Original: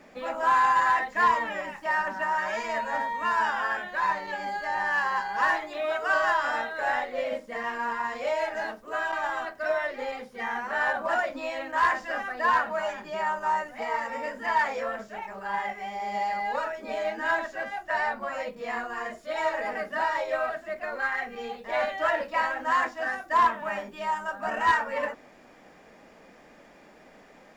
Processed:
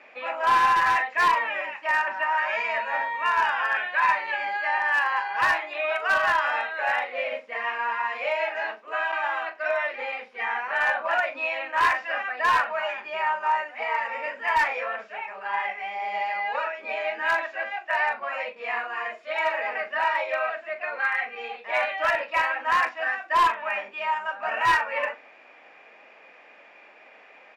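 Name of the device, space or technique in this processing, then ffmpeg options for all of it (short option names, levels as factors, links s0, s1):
megaphone: -filter_complex "[0:a]highpass=590,lowpass=3200,equalizer=f=2500:t=o:w=0.4:g=11.5,asoftclip=type=hard:threshold=0.119,asplit=2[s0][s1];[s1]adelay=40,volume=0.224[s2];[s0][s2]amix=inputs=2:normalize=0,asettb=1/sr,asplit=3[s3][s4][s5];[s3]atrim=end=3.744[s6];[s4]atrim=start=3.74:end=4.78,asetpts=PTS-STARTPTS,afade=t=in:d=0.004:c=qsin,afade=t=out:st=1.036:d=0.004:c=qsin,equalizer=f=2100:t=o:w=2:g=3.5[s7];[s5]atrim=start=4.776[s8];[s6][s7]acrossfade=d=0.004:c1=hsin:c2=qsin[s9];[s9][s8]acrossfade=d=0.004:c1=qsin:c2=hsin,volume=1.33"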